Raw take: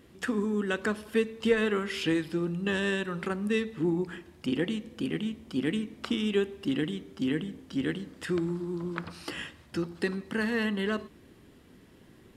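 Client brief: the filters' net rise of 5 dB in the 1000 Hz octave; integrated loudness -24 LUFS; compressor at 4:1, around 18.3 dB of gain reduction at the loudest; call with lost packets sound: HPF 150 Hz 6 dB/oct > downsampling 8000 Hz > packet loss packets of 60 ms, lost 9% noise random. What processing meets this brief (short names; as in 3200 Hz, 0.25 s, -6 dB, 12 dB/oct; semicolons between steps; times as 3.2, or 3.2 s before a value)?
bell 1000 Hz +6.5 dB; compressor 4:1, threshold -41 dBFS; HPF 150 Hz 6 dB/oct; downsampling 8000 Hz; packet loss packets of 60 ms, lost 9% noise random; gain +20 dB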